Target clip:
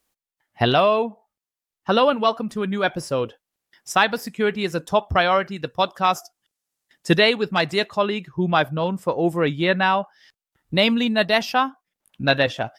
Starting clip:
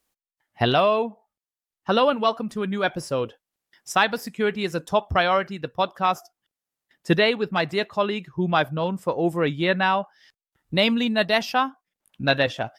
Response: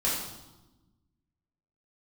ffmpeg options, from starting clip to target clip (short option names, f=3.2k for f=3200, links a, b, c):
-filter_complex "[0:a]asettb=1/sr,asplit=3[a][b][c];[a]atrim=end=5.564[d];[b]atrim=start=5.56:end=7.95,asetpts=PTS-STARTPTS,afade=t=in:d=0.004:c=qsin,afade=t=out:st=2.386:d=0.004:c=qsin,equalizer=f=7.6k:t=o:w=1.9:g=7[e];[c]atrim=start=7.946[f];[d][e]acrossfade=d=0.004:c1=hsin:c2=qsin[g];[g][f]acrossfade=d=0.004:c1=qsin:c2=hsin,volume=2dB"